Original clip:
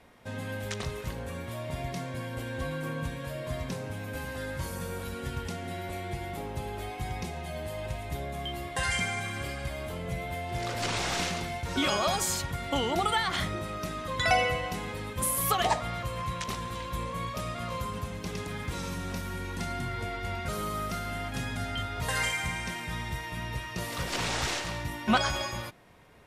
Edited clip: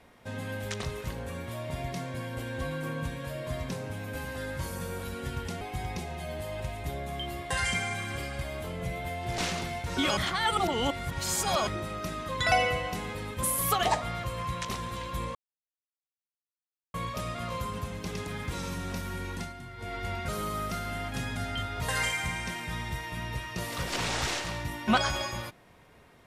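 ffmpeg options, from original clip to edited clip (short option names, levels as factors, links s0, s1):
-filter_complex "[0:a]asplit=8[s0][s1][s2][s3][s4][s5][s6][s7];[s0]atrim=end=5.612[s8];[s1]atrim=start=6.868:end=10.642[s9];[s2]atrim=start=11.168:end=11.962[s10];[s3]atrim=start=11.958:end=13.462,asetpts=PTS-STARTPTS,areverse[s11];[s4]atrim=start=13.458:end=17.14,asetpts=PTS-STARTPTS,afade=t=out:st=3.678:d=0.004:c=hsin,apad=pad_dur=1.59[s12];[s5]atrim=start=17.14:end=19.73,asetpts=PTS-STARTPTS,afade=t=in:d=0.004:c=hsin,afade=t=out:st=2.33:d=0.26:c=qsin:silence=0.316228[s13];[s6]atrim=start=19.73:end=19.97,asetpts=PTS-STARTPTS,volume=0.316[s14];[s7]atrim=start=19.97,asetpts=PTS-STARTPTS,afade=t=in:d=0.26:c=qsin:silence=0.316228[s15];[s8][s9]acrossfade=d=0.004:c1=hsin:c2=hsin[s16];[s16][s10]acrossfade=d=0.004:c1=hsin:c2=hsin[s17];[s17][s11]acrossfade=d=0.004:c1=hsin:c2=hsin[s18];[s12][s13][s14][s15]concat=n=4:v=0:a=1[s19];[s18][s19]acrossfade=d=0.004:c1=hsin:c2=hsin"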